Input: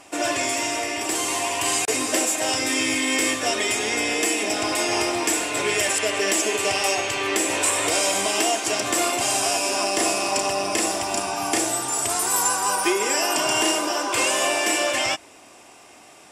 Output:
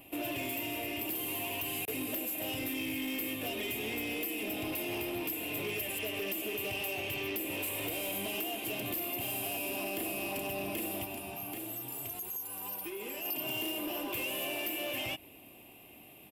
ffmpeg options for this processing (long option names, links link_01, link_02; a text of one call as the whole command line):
ffmpeg -i in.wav -filter_complex "[0:a]firequalizer=gain_entry='entry(140,0);entry(420,-8);entry(1400,-22);entry(2700,-4);entry(5700,-28);entry(8500,-18);entry(13000,14)':delay=0.05:min_phase=1,acompressor=threshold=-32dB:ratio=4,asoftclip=type=tanh:threshold=-32dB,asplit=3[link_01][link_02][link_03];[link_01]afade=type=out:start_time=11.04:duration=0.02[link_04];[link_02]flanger=delay=6.2:depth=2.3:regen=-61:speed=1.1:shape=sinusoidal,afade=type=in:start_time=11.04:duration=0.02,afade=type=out:start_time=13.24:duration=0.02[link_05];[link_03]afade=type=in:start_time=13.24:duration=0.02[link_06];[link_04][link_05][link_06]amix=inputs=3:normalize=0,volume=1.5dB" out.wav